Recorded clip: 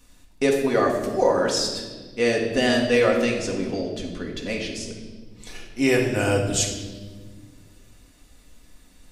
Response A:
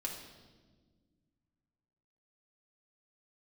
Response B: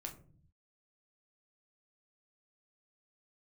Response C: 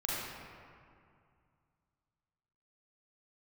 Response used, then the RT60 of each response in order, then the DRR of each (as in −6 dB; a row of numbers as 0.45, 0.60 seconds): A; 1.5, 0.45, 2.3 seconds; −1.0, 1.5, −6.5 decibels